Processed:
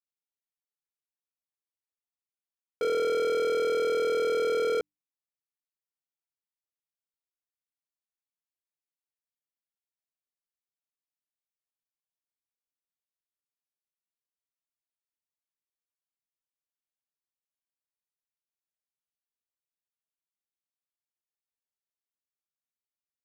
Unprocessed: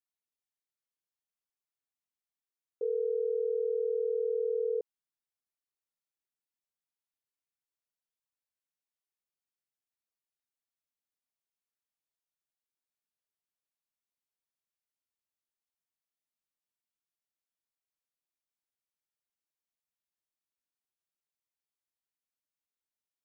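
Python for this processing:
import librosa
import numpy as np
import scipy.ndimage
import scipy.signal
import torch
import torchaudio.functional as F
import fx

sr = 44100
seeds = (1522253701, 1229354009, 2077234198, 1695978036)

y = fx.hum_notches(x, sr, base_hz=50, count=6)
y = fx.leveller(y, sr, passes=5)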